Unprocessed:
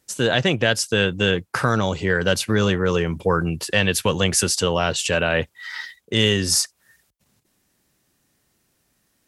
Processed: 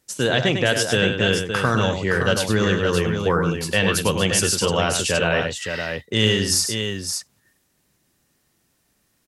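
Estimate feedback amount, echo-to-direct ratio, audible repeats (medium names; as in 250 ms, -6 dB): no regular repeats, -3.5 dB, 3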